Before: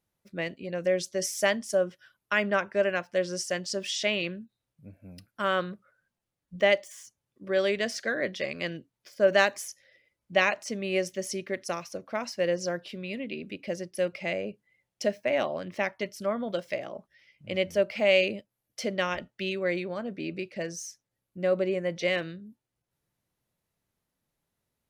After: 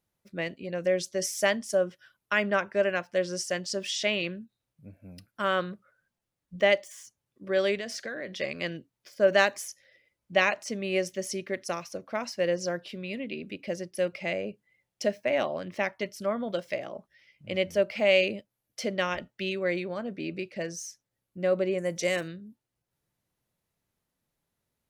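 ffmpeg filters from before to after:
-filter_complex "[0:a]asettb=1/sr,asplit=3[a][b][c];[a]atrim=end=7.754[d];[b]atrim=start=7.75:end=8.36,asetpts=PTS-STARTPTS,afade=t=in:d=0.004:c=qsin,afade=t=out:st=0.606:d=0.004:c=qsin,acompressor=threshold=-32dB:ratio=6:attack=3.2:release=140:knee=1:detection=peak[e];[c]atrim=start=8.356[f];[d][e]acrossfade=d=0.004:c1=hsin:c2=qsin[g];[g][f]acrossfade=d=0.004:c1=qsin:c2=hsin,asettb=1/sr,asplit=3[h][i][j];[h]atrim=end=21.784[k];[i]atrim=start=21.78:end=22.28,asetpts=PTS-STARTPTS,afade=t=in:d=0.004:c=qsin,afade=t=out:st=0.496:d=0.004:c=qsin,highshelf=f=5.4k:t=q:w=1.5:g=13.5[l];[j]atrim=start=22.276[m];[k][l]acrossfade=d=0.004:c1=hsin:c2=qsin[n];[n][m]acrossfade=d=0.004:c1=qsin:c2=hsin"

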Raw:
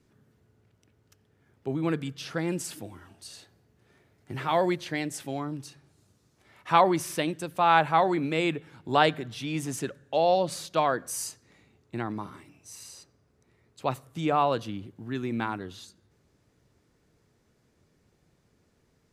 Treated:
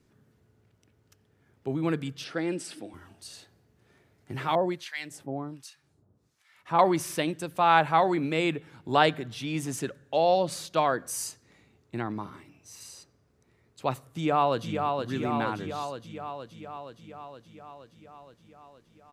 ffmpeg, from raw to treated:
-filter_complex "[0:a]asettb=1/sr,asplit=3[a][b][c];[a]atrim=end=2.244[d];[b]atrim=start=2.24:end=2.94,asetpts=PTS-STARTPTS,afade=t=in:d=0.004:c=qsin,afade=t=out:st=0.696:d=0.004:c=qsin,highpass=230,equalizer=f=300:t=q:w=4:g=4,equalizer=f=1k:t=q:w=4:g=-6,equalizer=f=6.8k:t=q:w=4:g=-10,lowpass=f=9.2k:w=0.5412,lowpass=f=9.2k:w=1.3066[e];[c]atrim=start=2.936[f];[d][e]acrossfade=d=0.004:c1=hsin:c2=qsin[g];[g][f]acrossfade=d=0.004:c1=qsin:c2=hsin,asettb=1/sr,asplit=3[h][i][j];[h]atrim=end=4.554[k];[i]atrim=start=4.55:end=6.79,asetpts=PTS-STARTPTS,afade=t=in:d=0.004:c=qsin,afade=t=out:st=2.236:d=0.004:c=qsin,acrossover=split=1100[l][m];[l]aeval=exprs='val(0)*(1-1/2+1/2*cos(2*PI*1.3*n/s))':c=same[n];[m]aeval=exprs='val(0)*(1-1/2-1/2*cos(2*PI*1.3*n/s))':c=same[o];[n][o]amix=inputs=2:normalize=0[p];[j]atrim=start=6.786[q];[k][p]acrossfade=d=0.004:c1=hsin:c2=qsin[r];[r][q]acrossfade=d=0.004:c1=qsin:c2=hsin,asettb=1/sr,asplit=3[s][t][u];[s]atrim=end=12.004[v];[t]atrim=start=12:end=12.81,asetpts=PTS-STARTPTS,afade=t=in:d=0.004:c=qsin,afade=t=out:st=0.806:d=0.004:c=qsin,equalizer=f=9.4k:t=o:w=0.77:g=-6[w];[u]atrim=start=12.806[x];[v][w]acrossfade=d=0.004:c1=hsin:c2=qsin[y];[y][x]acrossfade=d=0.004:c1=qsin:c2=hsin,asplit=2[z][aa];[aa]afade=t=in:st=14.08:d=0.01,afade=t=out:st=14.98:d=0.01,aecho=0:1:470|940|1410|1880|2350|2820|3290|3760|4230|4700|5170|5640:0.595662|0.416964|0.291874|0.204312|0.143018|0.100113|0.0700791|0.0490553|0.0343387|0.0240371|0.016826|0.0117782[ab];[z][ab]amix=inputs=2:normalize=0"

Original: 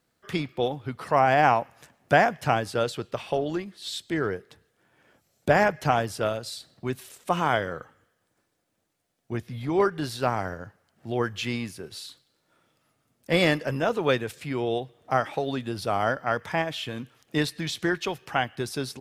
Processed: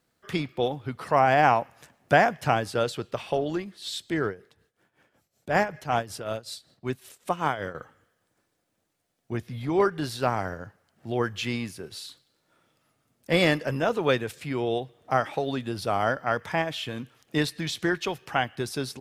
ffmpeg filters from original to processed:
-filter_complex "[0:a]asettb=1/sr,asplit=3[a][b][c];[a]atrim=end=4.264[d];[b]atrim=start=4.26:end=7.75,asetpts=PTS-STARTPTS,afade=t=in:d=0.004:c=qsin,afade=t=out:st=3.486:d=0.004:c=qsin,tremolo=f=5.3:d=0.78[e];[c]atrim=start=7.746[f];[d][e]acrossfade=d=0.004:c1=hsin:c2=qsin[g];[g][f]acrossfade=d=0.004:c1=qsin:c2=hsin"

